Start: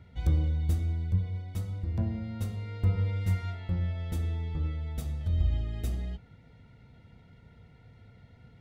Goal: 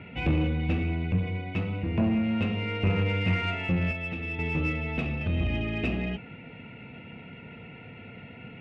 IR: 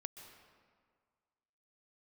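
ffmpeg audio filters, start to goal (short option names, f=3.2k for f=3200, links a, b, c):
-filter_complex "[0:a]equalizer=f=220:w=0.55:g=12.5,asplit=2[a][b];[b]highpass=f=720:p=1,volume=22dB,asoftclip=type=tanh:threshold=-9dB[c];[a][c]amix=inputs=2:normalize=0,lowpass=f=1.6k:p=1,volume=-6dB,asettb=1/sr,asplit=3[d][e][f];[d]atrim=end=3.914[g];[e]atrim=start=3.91:end=4.39,asetpts=PTS-STARTPTS,afade=t=in:d=0.004:c=qsin,afade=t=out:st=0.476:d=0.004:c=qsin,acrossover=split=310|2000[h][i][j];[h]acompressor=threshold=-32dB:ratio=4[k];[i]acompressor=threshold=-40dB:ratio=4[l];[j]acompressor=threshold=-49dB:ratio=4[m];[k][l][m]amix=inputs=3:normalize=0[n];[f]atrim=start=4.386[o];[g][n]acrossfade=d=0.004:c1=hsin:c2=qsin[p];[p][o]acrossfade=d=0.004:c1=qsin:c2=hsin,lowpass=f=2.6k:t=q:w=16,asplit=2[q][r];[r]asoftclip=type=tanh:threshold=-24.5dB,volume=-8dB[s];[q][s]amix=inputs=2:normalize=0,volume=-6.5dB"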